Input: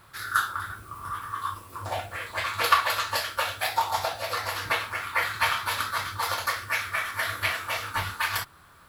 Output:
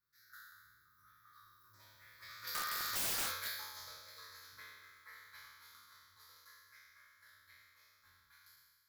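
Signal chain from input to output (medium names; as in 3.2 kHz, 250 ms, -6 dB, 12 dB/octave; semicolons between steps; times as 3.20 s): spectral sustain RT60 1.57 s; Doppler pass-by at 3.14 s, 22 m/s, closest 2.8 m; pre-emphasis filter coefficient 0.8; static phaser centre 2.8 kHz, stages 6; integer overflow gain 33 dB; trim +2 dB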